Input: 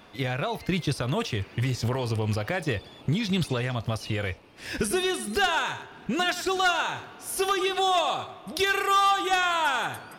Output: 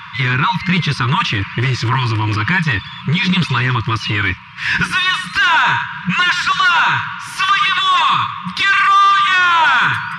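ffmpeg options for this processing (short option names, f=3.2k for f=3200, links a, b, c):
-af "afftfilt=real='re*(1-between(b*sr/4096,190,920))':imag='im*(1-between(b*sr/4096,190,920))':win_size=4096:overlap=0.75,apsyclip=31dB,highpass=150,lowpass=2.7k,volume=-7.5dB"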